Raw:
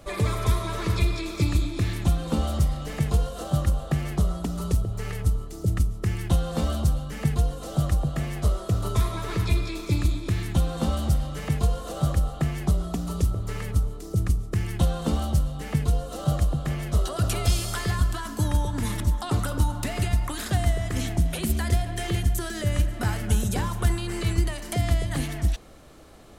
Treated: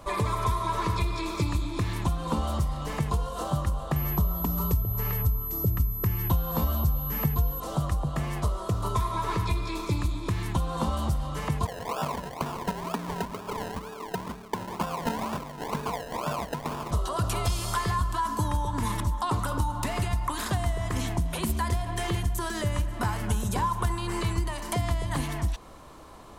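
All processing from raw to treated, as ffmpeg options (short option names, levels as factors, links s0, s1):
-filter_complex "[0:a]asettb=1/sr,asplit=3[s0][s1][s2];[s0]atrim=end=3.964[s3];[s1]atrim=start=3.96:end=7.6,asetpts=PTS-STARTPTS,afade=t=in:d=0.004:c=qsin,afade=t=out:st=3.636:d=0.004:c=qsin,highpass=47,lowshelf=f=130:g=9,aeval=exprs='val(0)+0.0355*sin(2*PI*12000*n/s)':c=same[s4];[s2]atrim=start=7.596[s5];[s3][s4]acrossfade=d=0.004:c1=hsin:c2=qsin[s6];[s6][s5]acrossfade=d=0.004:c1=qsin:c2=hsin,asettb=1/sr,asplit=3[s7][s8][s9];[s7]atrim=end=11.654[s10];[s8]atrim=start=11.65:end=16.91,asetpts=PTS-STARTPTS,afade=t=in:d=0.004:c=qsin,afade=t=out:st=5.256:d=0.004:c=qsin,highpass=250,lowpass=7800,aecho=1:1:4.6:0.53,atrim=end_sample=231966,acrusher=samples=30:mix=1:aa=0.000001:lfo=1:lforange=18:lforate=2.1[s11];[s9]atrim=start=16.906[s12];[s10][s11]acrossfade=d=0.004:c1=hsin:c2=qsin[s13];[s13][s12]acrossfade=d=0.004:c1=qsin:c2=hsin,equalizer=f=1000:w=3.8:g=14.5,acompressor=threshold=0.0562:ratio=2.5"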